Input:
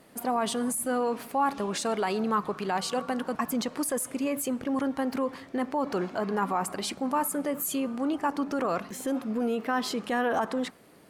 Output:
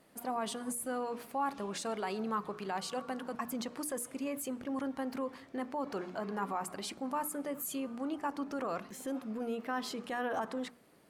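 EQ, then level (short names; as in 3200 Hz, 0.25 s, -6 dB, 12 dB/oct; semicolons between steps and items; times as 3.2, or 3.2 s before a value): notches 60/120/180/240/300/360/420/480 Hz; -8.0 dB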